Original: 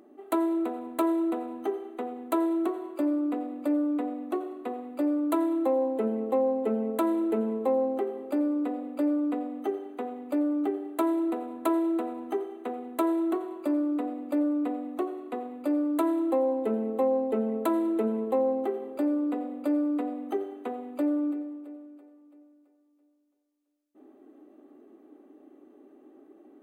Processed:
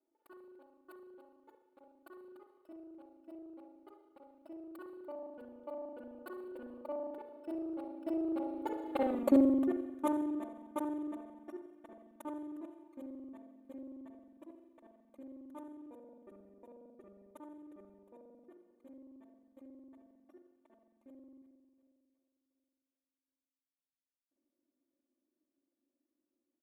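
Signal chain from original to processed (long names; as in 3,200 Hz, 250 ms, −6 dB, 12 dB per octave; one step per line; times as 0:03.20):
reversed piece by piece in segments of 41 ms
source passing by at 0:09.15, 35 m/s, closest 5.8 metres
parametric band 220 Hz −5 dB 0.56 octaves
comb filter 3.4 ms, depth 92%
level +4 dB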